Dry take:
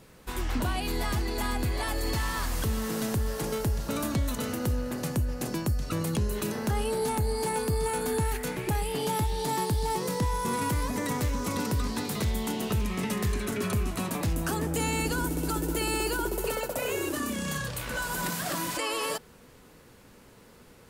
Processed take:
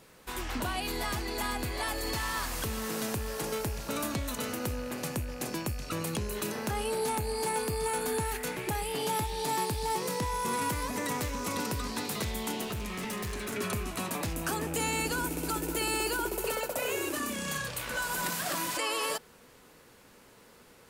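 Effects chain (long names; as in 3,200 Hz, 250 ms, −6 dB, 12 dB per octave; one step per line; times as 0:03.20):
loose part that buzzes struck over −40 dBFS, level −38 dBFS
low-shelf EQ 270 Hz −9 dB
0:12.63–0:13.53: gain into a clipping stage and back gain 32.5 dB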